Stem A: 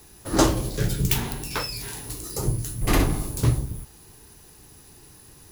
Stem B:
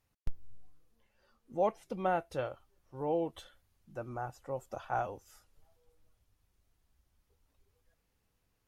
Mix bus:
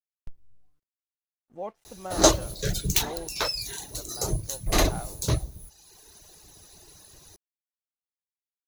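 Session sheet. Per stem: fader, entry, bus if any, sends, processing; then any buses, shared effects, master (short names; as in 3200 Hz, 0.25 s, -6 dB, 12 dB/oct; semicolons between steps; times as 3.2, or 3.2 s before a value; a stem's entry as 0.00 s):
-1.0 dB, 1.85 s, no send, reverb removal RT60 1.1 s; thirty-one-band EQ 125 Hz -7 dB, 250 Hz -8 dB, 630 Hz +9 dB, 4000 Hz +9 dB, 6300 Hz +10 dB
-6.0 dB, 0.00 s, no send, crossover distortion -59 dBFS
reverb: off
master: dry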